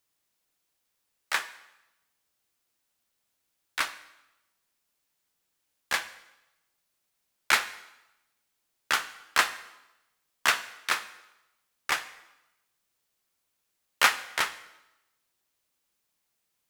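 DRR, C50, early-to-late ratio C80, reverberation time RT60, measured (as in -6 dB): 11.5 dB, 14.5 dB, 16.5 dB, 0.95 s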